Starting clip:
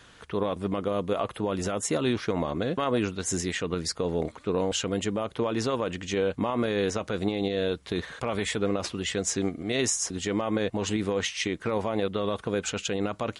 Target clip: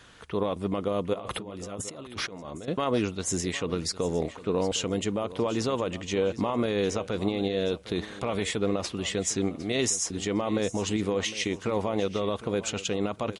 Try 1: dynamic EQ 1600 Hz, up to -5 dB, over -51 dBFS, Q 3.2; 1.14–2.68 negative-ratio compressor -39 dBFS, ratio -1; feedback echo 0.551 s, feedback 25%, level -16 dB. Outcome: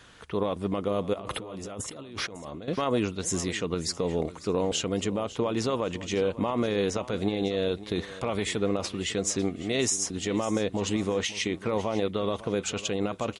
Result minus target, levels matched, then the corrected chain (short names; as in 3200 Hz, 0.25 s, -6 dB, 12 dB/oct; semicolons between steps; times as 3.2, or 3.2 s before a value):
echo 0.206 s early
dynamic EQ 1600 Hz, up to -5 dB, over -51 dBFS, Q 3.2; 1.14–2.68 negative-ratio compressor -39 dBFS, ratio -1; feedback echo 0.757 s, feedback 25%, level -16 dB